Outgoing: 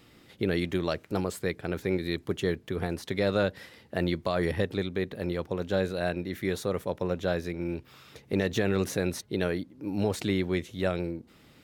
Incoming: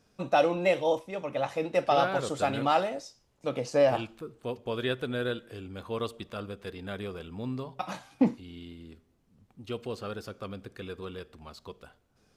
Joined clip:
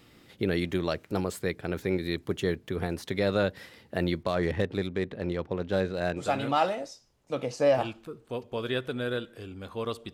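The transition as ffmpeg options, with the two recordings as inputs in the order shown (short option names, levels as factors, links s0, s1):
-filter_complex "[0:a]asettb=1/sr,asplit=3[s0][s1][s2];[s0]atrim=end=4.234[s3];[s1]atrim=start=4.23:end=6.24,asetpts=PTS-STARTPTS,afade=t=in:d=0.004:c=qsin,afade=t=out:st=2.006:d=0.004:c=qsin,adynamicsmooth=sensitivity=7.5:basefreq=3400[s4];[s2]atrim=start=6.236[s5];[s3][s4]acrossfade=d=0.004:c1=hsin:c2=qsin[s6];[s6][s5]acrossfade=d=0.004:c1=qsin:c2=hsin,apad=whole_dur=10.13,atrim=end=10.13,atrim=end=6.24,asetpts=PTS-STARTPTS[s7];[1:a]atrim=start=2.3:end=6.27,asetpts=PTS-STARTPTS[s8];[s7][s8]acrossfade=d=0.08:c1=tri:c2=tri"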